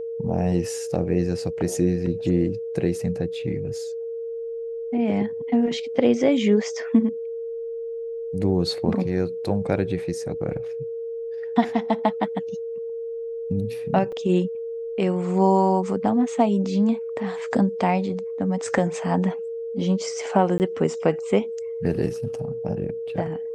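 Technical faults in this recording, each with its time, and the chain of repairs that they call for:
whine 460 Hz -28 dBFS
14.12–14.13 s: dropout 5.1 ms
20.58–20.60 s: dropout 19 ms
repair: band-stop 460 Hz, Q 30; interpolate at 14.12 s, 5.1 ms; interpolate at 20.58 s, 19 ms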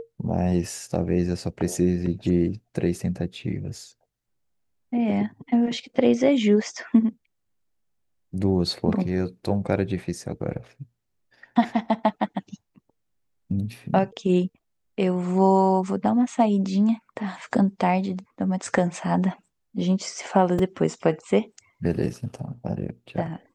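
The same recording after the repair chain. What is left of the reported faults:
nothing left

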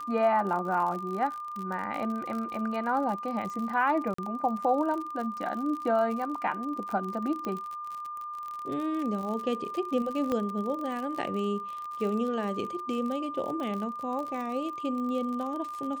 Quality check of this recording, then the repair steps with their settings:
crackle 48 per s -34 dBFS
whine 1.2 kHz -35 dBFS
4.14–4.18 s: dropout 44 ms
7.45 s: pop -22 dBFS
10.32 s: pop -18 dBFS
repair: de-click; band-stop 1.2 kHz, Q 30; interpolate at 4.14 s, 44 ms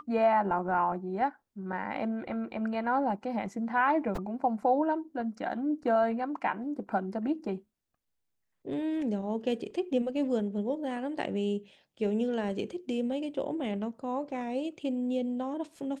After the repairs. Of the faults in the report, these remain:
10.32 s: pop

